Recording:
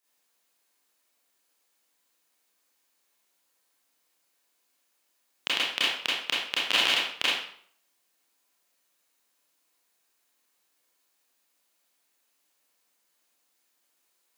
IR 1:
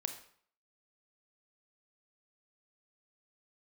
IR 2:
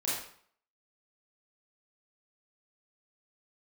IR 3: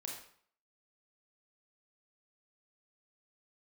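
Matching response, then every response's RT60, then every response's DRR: 2; 0.55, 0.55, 0.55 s; 6.5, -8.0, -1.0 dB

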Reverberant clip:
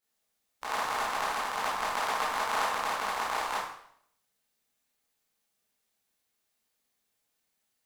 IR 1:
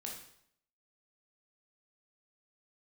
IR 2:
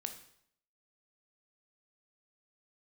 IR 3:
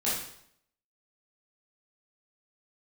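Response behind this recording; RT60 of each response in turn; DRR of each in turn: 3; 0.70, 0.70, 0.70 s; -1.5, 6.0, -9.5 dB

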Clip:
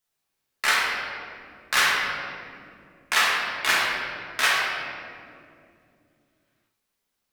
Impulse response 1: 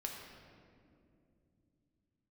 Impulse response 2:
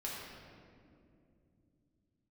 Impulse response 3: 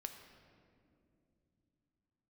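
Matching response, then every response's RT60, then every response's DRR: 2; 2.5, 2.5, 2.4 s; 0.0, -6.0, 5.5 dB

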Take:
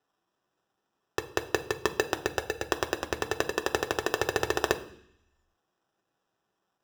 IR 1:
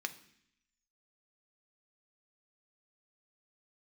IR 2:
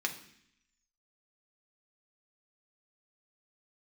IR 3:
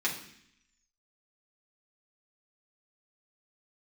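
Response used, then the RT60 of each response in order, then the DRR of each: 1; 0.65, 0.65, 0.65 s; 6.5, 1.5, -5.5 dB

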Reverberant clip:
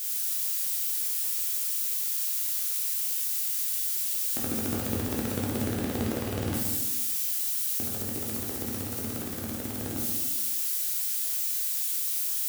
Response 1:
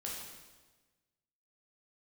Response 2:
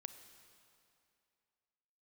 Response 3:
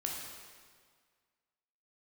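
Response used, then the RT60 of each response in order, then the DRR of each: 1; 1.3, 2.5, 1.8 s; -4.0, 9.5, -1.5 dB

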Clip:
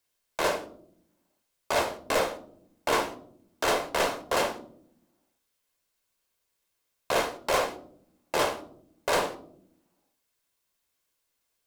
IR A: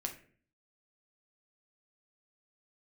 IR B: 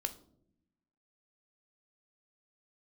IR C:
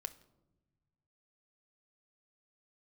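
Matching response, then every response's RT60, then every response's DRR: B; 0.45 s, not exponential, not exponential; 3.0, 7.5, 10.5 dB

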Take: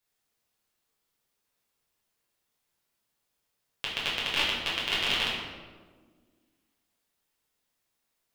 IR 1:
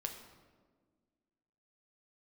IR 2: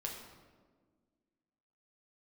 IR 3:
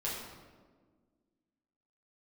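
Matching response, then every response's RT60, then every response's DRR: 3; 1.6, 1.5, 1.5 s; 3.5, -1.0, -7.5 dB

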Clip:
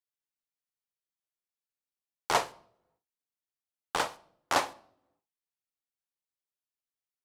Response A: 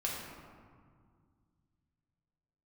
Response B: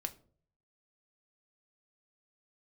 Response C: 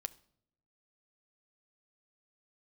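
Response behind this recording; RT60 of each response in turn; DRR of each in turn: C; 2.0 s, not exponential, not exponential; -4.5, 6.5, 12.0 dB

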